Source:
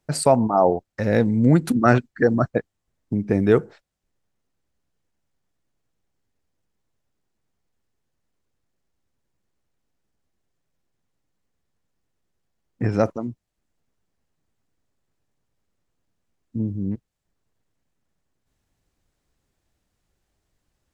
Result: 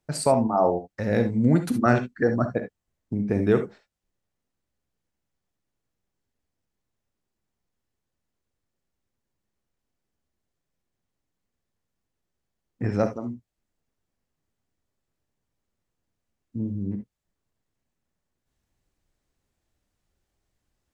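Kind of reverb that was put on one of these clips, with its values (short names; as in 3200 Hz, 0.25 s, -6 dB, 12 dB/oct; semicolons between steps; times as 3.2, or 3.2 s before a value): non-linear reverb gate 90 ms rising, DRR 7 dB; gain -4.5 dB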